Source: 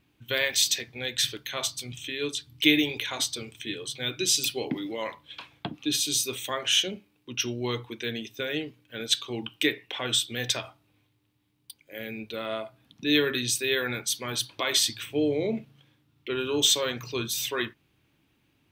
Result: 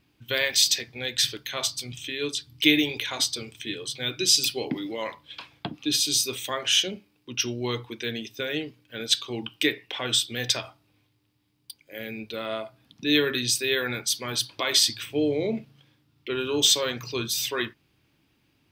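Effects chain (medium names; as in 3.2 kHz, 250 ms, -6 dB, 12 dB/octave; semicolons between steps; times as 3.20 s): peaking EQ 4.9 kHz +7 dB 0.28 oct; trim +1 dB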